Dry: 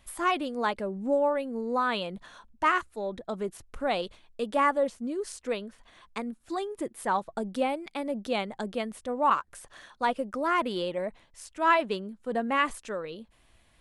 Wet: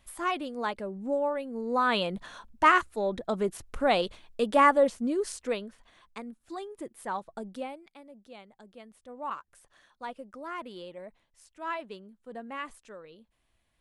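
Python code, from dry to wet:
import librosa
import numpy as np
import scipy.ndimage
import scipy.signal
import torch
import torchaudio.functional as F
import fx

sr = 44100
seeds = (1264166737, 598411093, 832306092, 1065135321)

y = fx.gain(x, sr, db=fx.line((1.48, -3.5), (2.0, 4.0), (5.15, 4.0), (6.18, -6.5), (7.5, -6.5), (8.08, -19.0), (8.65, -19.0), (9.23, -12.0)))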